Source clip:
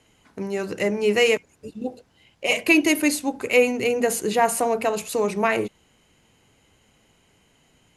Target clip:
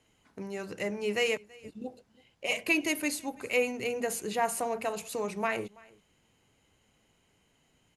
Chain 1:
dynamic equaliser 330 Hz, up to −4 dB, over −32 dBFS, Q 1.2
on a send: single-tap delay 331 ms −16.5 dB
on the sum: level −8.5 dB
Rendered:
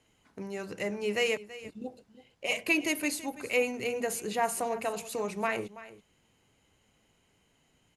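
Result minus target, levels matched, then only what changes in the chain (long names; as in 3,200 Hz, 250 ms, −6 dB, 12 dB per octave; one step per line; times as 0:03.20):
echo-to-direct +8 dB
change: single-tap delay 331 ms −24.5 dB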